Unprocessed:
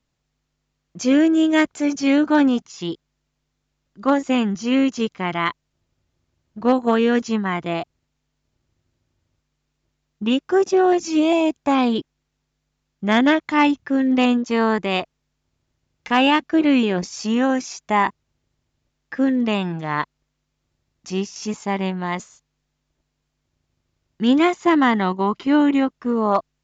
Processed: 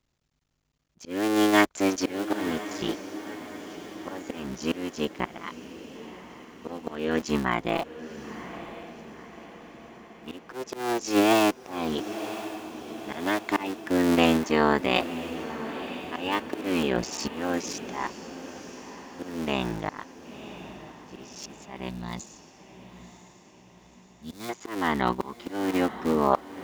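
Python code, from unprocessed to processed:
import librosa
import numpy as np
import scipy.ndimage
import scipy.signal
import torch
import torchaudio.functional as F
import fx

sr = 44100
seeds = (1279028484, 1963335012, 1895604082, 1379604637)

p1 = fx.cycle_switch(x, sr, every=3, mode='muted')
p2 = fx.dynamic_eq(p1, sr, hz=130.0, q=0.81, threshold_db=-36.0, ratio=4.0, max_db=-6)
p3 = fx.auto_swell(p2, sr, attack_ms=437.0)
p4 = fx.spec_box(p3, sr, start_s=21.89, length_s=2.6, low_hz=250.0, high_hz=3400.0, gain_db=-12)
y = p4 + fx.echo_diffused(p4, sr, ms=994, feedback_pct=54, wet_db=-12.0, dry=0)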